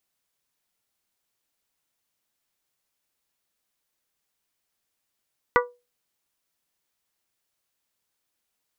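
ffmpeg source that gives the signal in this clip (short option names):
-f lavfi -i "aevalsrc='0.168*pow(10,-3*t/0.27)*sin(2*PI*488*t)+0.158*pow(10,-3*t/0.166)*sin(2*PI*976*t)+0.15*pow(10,-3*t/0.146)*sin(2*PI*1171.2*t)+0.141*pow(10,-3*t/0.125)*sin(2*PI*1464*t)+0.133*pow(10,-3*t/0.102)*sin(2*PI*1952*t)':d=0.89:s=44100"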